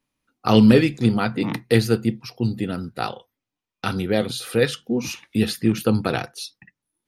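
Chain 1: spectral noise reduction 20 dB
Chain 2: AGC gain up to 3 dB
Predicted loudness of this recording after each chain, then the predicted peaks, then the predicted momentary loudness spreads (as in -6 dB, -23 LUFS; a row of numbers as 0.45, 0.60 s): -21.5, -20.5 LUFS; -2.0, -2.0 dBFS; 14, 12 LU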